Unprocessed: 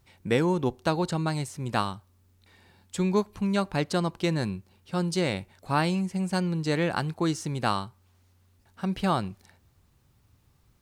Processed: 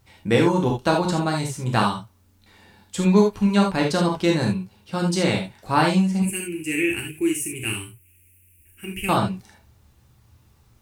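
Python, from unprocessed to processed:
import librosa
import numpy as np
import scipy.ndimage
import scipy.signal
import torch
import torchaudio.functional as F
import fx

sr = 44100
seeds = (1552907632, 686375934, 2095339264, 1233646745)

y = fx.curve_eq(x, sr, hz=(100.0, 170.0, 370.0, 550.0, 1200.0, 2600.0, 3900.0, 9700.0), db=(0, -18, 1, -27, -23, 11, -28, 14), at=(6.22, 9.09))
y = fx.rev_gated(y, sr, seeds[0], gate_ms=100, shape='flat', drr_db=-0.5)
y = F.gain(torch.from_numpy(y), 3.5).numpy()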